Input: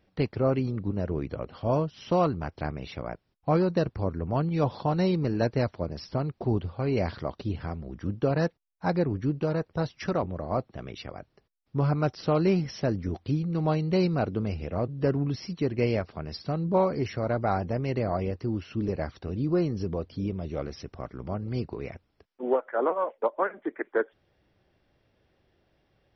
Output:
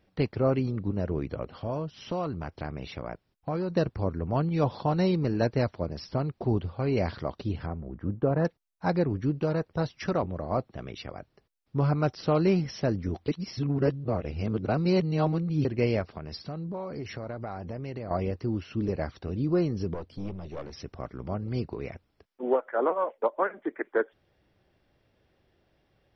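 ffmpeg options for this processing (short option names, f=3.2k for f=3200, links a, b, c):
-filter_complex "[0:a]asettb=1/sr,asplit=3[a][b][c];[a]atrim=end=1.544[d];[b]atrim=start=1.54:end=3.72,asetpts=PTS-STARTPTS,afade=t=in:d=0.004:c=qsin,afade=t=out:st=2.176:d=0.004:c=qsin,acompressor=threshold=-30dB:ratio=2.5:attack=3.2:release=140:knee=1:detection=peak[e];[c]atrim=start=3.716[f];[d][e]acrossfade=d=0.004:c1=hsin:c2=qsin[g];[g][f]acrossfade=d=0.004:c1=qsin:c2=hsin,asettb=1/sr,asplit=3[h][i][j];[h]atrim=end=7.664[k];[i]atrim=start=7.66:end=8.45,asetpts=PTS-STARTPTS,afade=t=in:d=0.004:c=qsin,afade=t=out:st=0.786:d=0.004:c=qsin,lowpass=1.4k[l];[j]atrim=start=8.446[m];[k][l]acrossfade=d=0.004:c1=hsin:c2=qsin[n];[n][m]acrossfade=d=0.004:c1=qsin:c2=hsin,asettb=1/sr,asplit=3[o][p][q];[o]atrim=end=16.174[r];[p]atrim=start=16.17:end=18.11,asetpts=PTS-STARTPTS,afade=t=in:d=0.004:c=qsin,afade=t=out:st=1.936:d=0.004:c=qsin,acompressor=threshold=-33dB:ratio=5:attack=3.2:release=140:knee=1:detection=peak[s];[q]atrim=start=18.106[t];[r][s]acrossfade=d=0.004:c1=hsin:c2=qsin[u];[u][t]acrossfade=d=0.004:c1=qsin:c2=hsin,asettb=1/sr,asplit=3[v][w][x];[v]atrim=end=19.944[y];[w]atrim=start=19.94:end=20.73,asetpts=PTS-STARTPTS,afade=t=in:d=0.004:c=qsin,afade=t=out:st=0.786:d=0.004:c=qsin,aeval=exprs='(tanh(31.6*val(0)+0.65)-tanh(0.65))/31.6':c=same[z];[x]atrim=start=20.726[aa];[y][z]acrossfade=d=0.004:c1=hsin:c2=qsin[ab];[ab][aa]acrossfade=d=0.004:c1=qsin:c2=hsin,asplit=3[ac][ad][ae];[ac]atrim=end=13.282[af];[ad]atrim=start=13.278:end=15.652,asetpts=PTS-STARTPTS,areverse[ag];[ae]atrim=start=15.648[ah];[af][ag]acrossfade=d=0.004:c1=hsin:c2=hsin[ai];[ai][ah]acrossfade=d=0.004:c1=hsin:c2=hsin"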